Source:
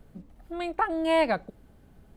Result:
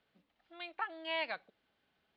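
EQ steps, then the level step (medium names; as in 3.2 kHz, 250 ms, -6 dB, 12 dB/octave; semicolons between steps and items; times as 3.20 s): band-pass filter 3.6 kHz, Q 1.4; distance through air 210 m; +1.5 dB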